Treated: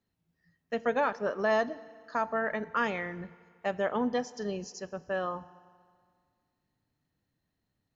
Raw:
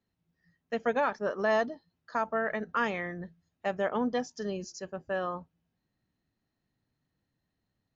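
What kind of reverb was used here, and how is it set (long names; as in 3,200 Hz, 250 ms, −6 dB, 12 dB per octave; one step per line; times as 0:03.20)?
feedback delay network reverb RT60 2 s, low-frequency decay 0.9×, high-frequency decay 0.9×, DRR 16.5 dB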